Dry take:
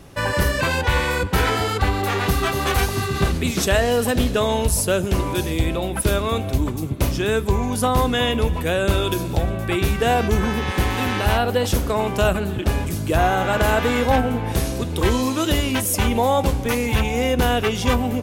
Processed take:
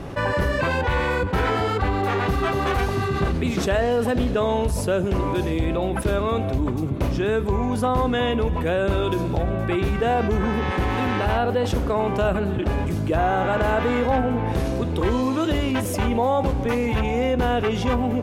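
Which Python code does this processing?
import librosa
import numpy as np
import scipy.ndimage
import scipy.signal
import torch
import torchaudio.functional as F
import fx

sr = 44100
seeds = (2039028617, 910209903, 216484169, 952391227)

y = fx.lowpass(x, sr, hz=1300.0, slope=6)
y = fx.low_shelf(y, sr, hz=200.0, db=-4.0)
y = fx.env_flatten(y, sr, amount_pct=50)
y = y * 10.0 ** (-2.0 / 20.0)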